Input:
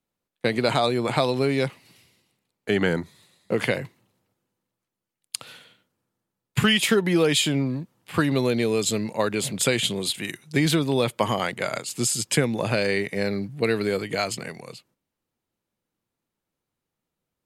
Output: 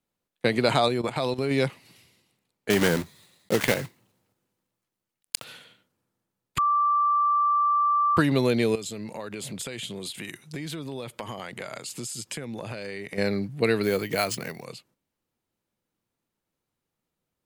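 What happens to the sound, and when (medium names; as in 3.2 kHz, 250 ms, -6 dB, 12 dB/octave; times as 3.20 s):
0.88–1.51 s: level held to a coarse grid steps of 13 dB
2.70–5.45 s: block-companded coder 3-bit
6.58–8.17 s: bleep 1.17 kHz -19 dBFS
8.75–13.18 s: compression, threshold -32 dBFS
13.83–14.65 s: careless resampling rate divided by 3×, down none, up hold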